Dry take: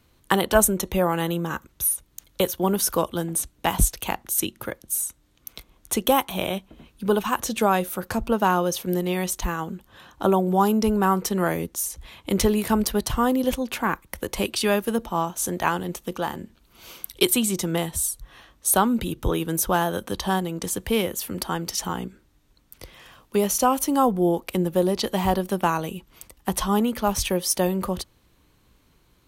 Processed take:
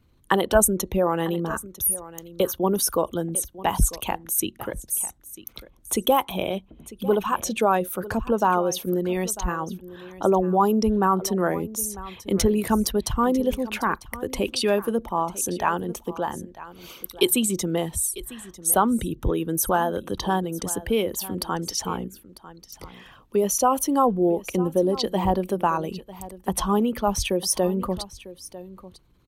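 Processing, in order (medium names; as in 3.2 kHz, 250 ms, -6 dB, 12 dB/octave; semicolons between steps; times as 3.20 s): resonances exaggerated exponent 1.5; delay 948 ms -17 dB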